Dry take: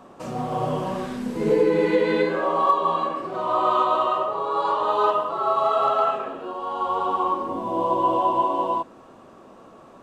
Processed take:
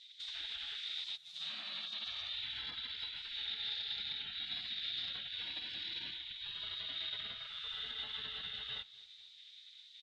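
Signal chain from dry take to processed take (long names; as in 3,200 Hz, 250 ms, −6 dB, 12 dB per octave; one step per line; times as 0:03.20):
stylus tracing distortion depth 0.05 ms
0:01.16–0:02.07: Bessel high-pass filter 600 Hz, order 4
gate on every frequency bin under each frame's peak −30 dB weak
downward compressor 2.5 to 1, threshold −55 dBFS, peak gain reduction 13 dB
brickwall limiter −44.5 dBFS, peak gain reduction 6.5 dB
low-pass with resonance 3,700 Hz, resonance Q 12
repeating echo 245 ms, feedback 48%, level −23.5 dB
level +2.5 dB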